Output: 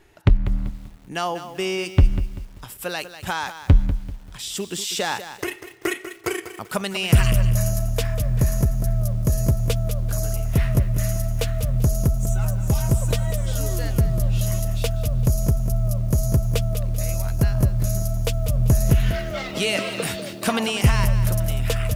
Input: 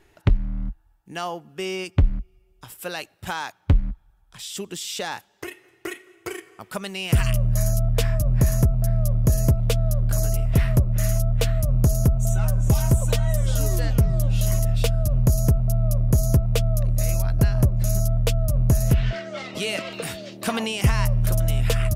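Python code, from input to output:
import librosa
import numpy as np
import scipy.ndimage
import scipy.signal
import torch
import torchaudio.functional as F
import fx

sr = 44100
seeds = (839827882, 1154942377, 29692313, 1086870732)

y = fx.rider(x, sr, range_db=10, speed_s=2.0)
y = fx.echo_crushed(y, sr, ms=194, feedback_pct=35, bits=7, wet_db=-11)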